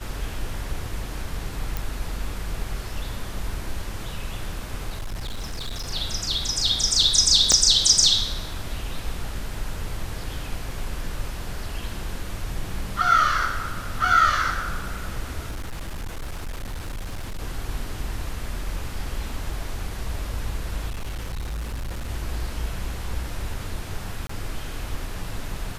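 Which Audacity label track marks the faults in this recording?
1.770000	1.770000	pop
4.890000	5.910000	clipped -26.5 dBFS
7.520000	7.520000	pop -4 dBFS
15.490000	17.390000	clipped -27.5 dBFS
20.890000	22.100000	clipped -26.5 dBFS
24.270000	24.290000	dropout 24 ms

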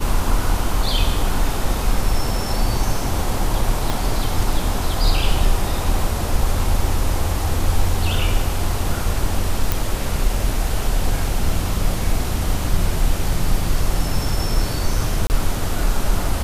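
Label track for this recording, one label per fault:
3.900000	3.900000	pop
9.720000	9.720000	pop
15.270000	15.300000	dropout 29 ms

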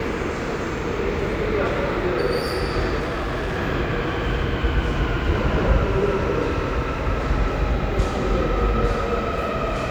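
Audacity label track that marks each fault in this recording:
2.990000	3.580000	clipped -22 dBFS

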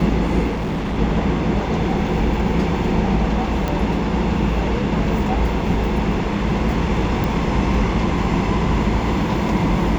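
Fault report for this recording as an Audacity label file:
0.500000	0.990000	clipped -19.5 dBFS
3.680000	3.680000	pop -9 dBFS
7.240000	7.240000	pop

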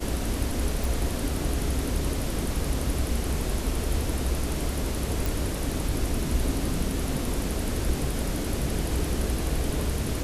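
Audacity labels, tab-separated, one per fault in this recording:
0.840000	0.840000	pop
5.260000	5.260000	pop

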